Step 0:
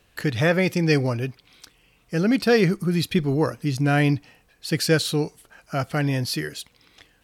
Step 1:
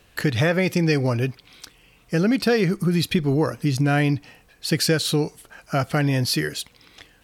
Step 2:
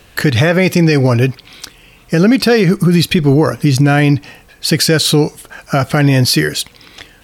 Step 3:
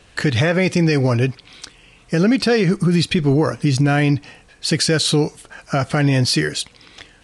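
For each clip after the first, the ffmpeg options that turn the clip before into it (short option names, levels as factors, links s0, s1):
-af "acompressor=threshold=0.0794:ratio=4,volume=1.78"
-af "alimiter=level_in=4.73:limit=0.891:release=50:level=0:latency=1,volume=0.794"
-af "volume=0.531" -ar 22050 -c:a libvorbis -b:a 48k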